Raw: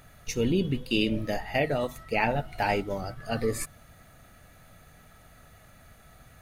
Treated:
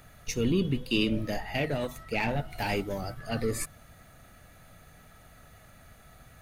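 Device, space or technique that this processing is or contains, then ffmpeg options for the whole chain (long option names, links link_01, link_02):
one-band saturation: -filter_complex "[0:a]asettb=1/sr,asplit=3[link_01][link_02][link_03];[link_01]atrim=end=2.504[link_04];[link_02]atrim=start=2.5:end=3.2,asetpts=PTS-STARTPTS,afade=type=in:duration=0.004:curve=qsin,afade=type=out:start_time=0.696:duration=0.004:curve=qsin,highshelf=frequency=9100:gain=7.5[link_05];[link_03]atrim=start=3.196[link_06];[link_04][link_05]acrossfade=duration=0.004:curve1=hsin:curve2=qsin[link_07];[link_07][link_06]acrossfade=duration=0.004:curve1=qsin:curve2=hsin,acrossover=split=370|2100[link_08][link_09][link_10];[link_09]asoftclip=type=tanh:threshold=-31.5dB[link_11];[link_08][link_11][link_10]amix=inputs=3:normalize=0"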